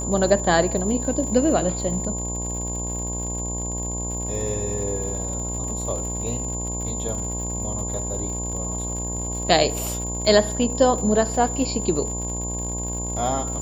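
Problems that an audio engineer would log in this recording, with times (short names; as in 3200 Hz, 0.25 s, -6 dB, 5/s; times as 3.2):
buzz 60 Hz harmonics 18 -30 dBFS
crackle 110/s -32 dBFS
tone 7100 Hz -29 dBFS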